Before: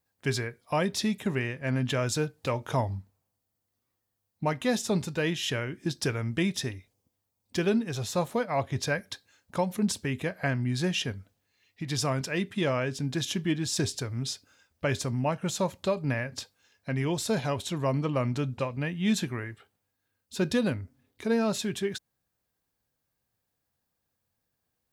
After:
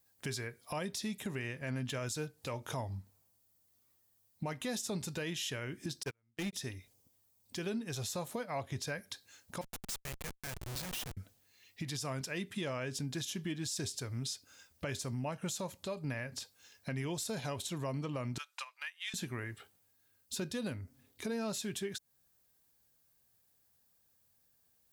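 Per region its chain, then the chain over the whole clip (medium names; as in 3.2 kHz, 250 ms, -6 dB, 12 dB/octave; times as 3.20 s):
6.03–6.53 s: gate -25 dBFS, range -38 dB + waveshaping leveller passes 3
9.61–11.17 s: amplifier tone stack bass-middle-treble 10-0-10 + Schmitt trigger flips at -40 dBFS
18.38–19.14 s: inverse Chebyshev high-pass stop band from 240 Hz, stop band 70 dB + transient shaper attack +11 dB, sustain -6 dB
whole clip: treble shelf 4.5 kHz +10.5 dB; compression 3:1, threshold -39 dBFS; peak limiter -30 dBFS; trim +1 dB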